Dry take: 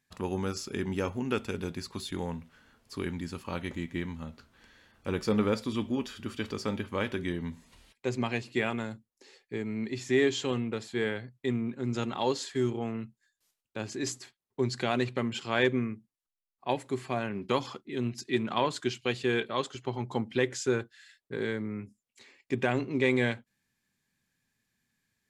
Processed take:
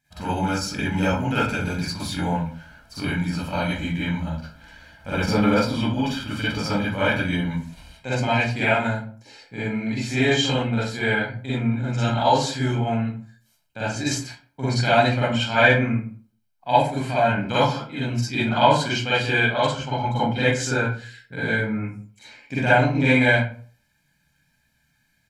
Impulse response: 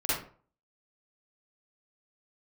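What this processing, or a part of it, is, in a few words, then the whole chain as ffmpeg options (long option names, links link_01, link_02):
microphone above a desk: -filter_complex "[0:a]aecho=1:1:1.3:0.79[link_01];[1:a]atrim=start_sample=2205[link_02];[link_01][link_02]afir=irnorm=-1:irlink=0,volume=1dB"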